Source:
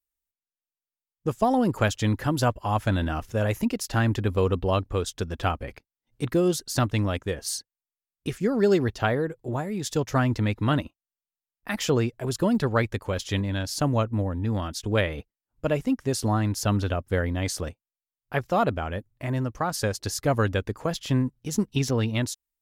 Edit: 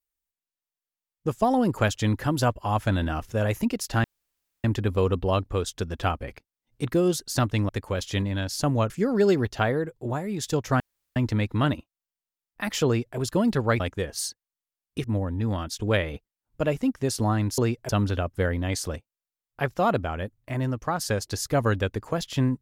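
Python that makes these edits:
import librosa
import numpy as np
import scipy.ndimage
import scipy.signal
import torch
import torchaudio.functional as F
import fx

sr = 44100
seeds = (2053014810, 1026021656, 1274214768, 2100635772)

y = fx.edit(x, sr, fx.insert_room_tone(at_s=4.04, length_s=0.6),
    fx.swap(start_s=7.09, length_s=1.24, other_s=12.87, other_length_s=1.21),
    fx.insert_room_tone(at_s=10.23, length_s=0.36),
    fx.duplicate(start_s=11.93, length_s=0.31, to_s=16.62), tone=tone)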